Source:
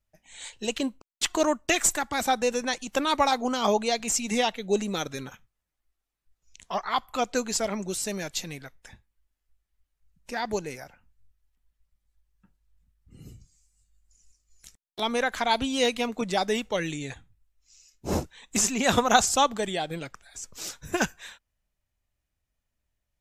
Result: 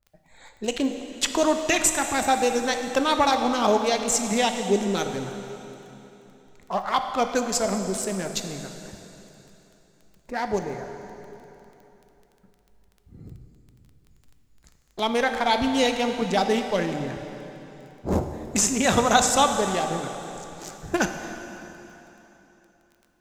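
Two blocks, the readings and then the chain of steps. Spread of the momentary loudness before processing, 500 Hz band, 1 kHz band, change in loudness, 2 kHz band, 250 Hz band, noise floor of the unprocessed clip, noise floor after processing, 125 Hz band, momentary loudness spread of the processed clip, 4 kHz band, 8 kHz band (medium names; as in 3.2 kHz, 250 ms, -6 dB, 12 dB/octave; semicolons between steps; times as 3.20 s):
17 LU, +3.5 dB, +3.5 dB, +3.0 dB, +2.0 dB, +4.0 dB, -83 dBFS, -62 dBFS, +4.5 dB, 18 LU, +1.5 dB, +2.5 dB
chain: local Wiener filter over 15 samples; in parallel at 0 dB: peak limiter -15 dBFS, peak gain reduction 10 dB; on the sum: wow and flutter 27 cents; crackle 11 per s -38 dBFS; plate-style reverb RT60 3.4 s, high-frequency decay 0.9×, DRR 5.5 dB; trim -2.5 dB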